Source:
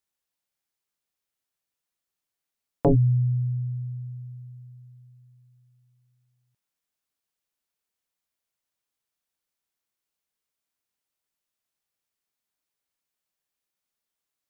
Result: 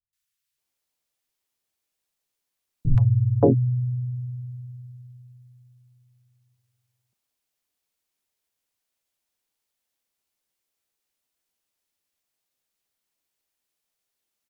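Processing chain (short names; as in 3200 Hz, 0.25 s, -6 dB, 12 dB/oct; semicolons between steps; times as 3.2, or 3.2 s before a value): harmoniser -3 st -4 dB; three bands offset in time lows, highs, mids 0.13/0.58 s, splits 150/1300 Hz; gain +3 dB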